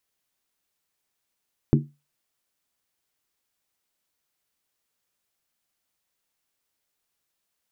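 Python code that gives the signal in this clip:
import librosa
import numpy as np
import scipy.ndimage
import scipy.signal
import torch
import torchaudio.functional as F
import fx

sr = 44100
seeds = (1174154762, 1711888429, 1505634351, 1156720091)

y = fx.strike_skin(sr, length_s=0.63, level_db=-12.5, hz=145.0, decay_s=0.26, tilt_db=3.0, modes=5)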